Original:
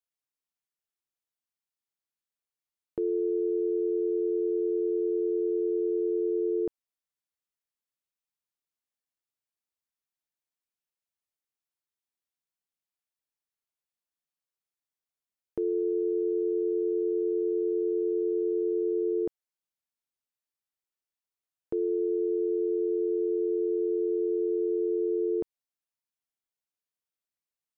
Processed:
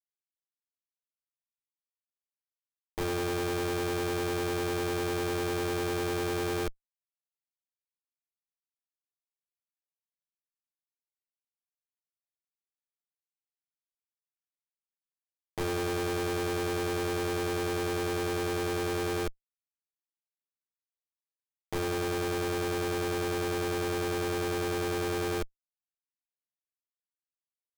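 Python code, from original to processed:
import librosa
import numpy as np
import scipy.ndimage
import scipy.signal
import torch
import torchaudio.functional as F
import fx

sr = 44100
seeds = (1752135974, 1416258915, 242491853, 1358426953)

y = fx.wiener(x, sr, points=15)
y = fx.cheby_harmonics(y, sr, harmonics=(3, 4, 5, 6), levels_db=(-8, -39, -34, -20), full_scale_db=-21.5)
y = fx.schmitt(y, sr, flips_db=-44.5)
y = y * librosa.db_to_amplitude(4.0)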